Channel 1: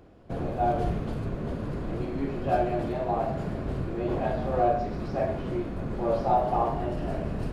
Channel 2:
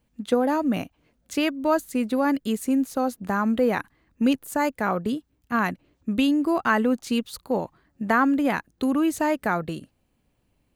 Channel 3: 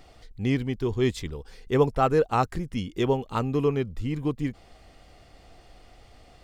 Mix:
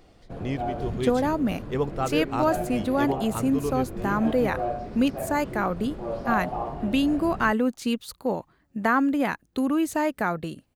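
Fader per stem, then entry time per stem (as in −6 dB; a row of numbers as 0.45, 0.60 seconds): −5.0, −1.5, −5.5 decibels; 0.00, 0.75, 0.00 seconds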